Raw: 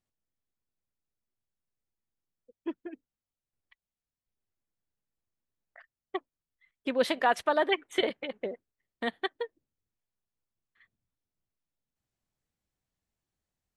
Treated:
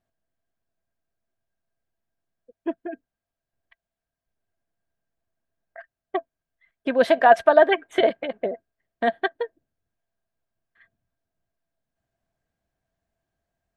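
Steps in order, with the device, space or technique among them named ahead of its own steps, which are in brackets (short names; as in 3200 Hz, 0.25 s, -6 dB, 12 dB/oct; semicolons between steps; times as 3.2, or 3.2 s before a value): inside a helmet (high shelf 3100 Hz -10 dB; small resonant body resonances 670/1600 Hz, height 16 dB, ringing for 70 ms); gain +6.5 dB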